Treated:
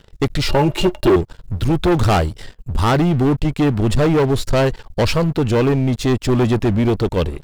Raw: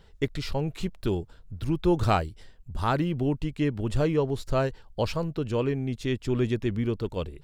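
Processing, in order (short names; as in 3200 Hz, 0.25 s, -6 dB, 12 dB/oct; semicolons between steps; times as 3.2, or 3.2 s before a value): soft clip -25.5 dBFS, distortion -10 dB; 0.48–1.16 small resonant body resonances 360/600/860/2800 Hz, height 18 dB, ringing for 90 ms; sample leveller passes 3; gain +4.5 dB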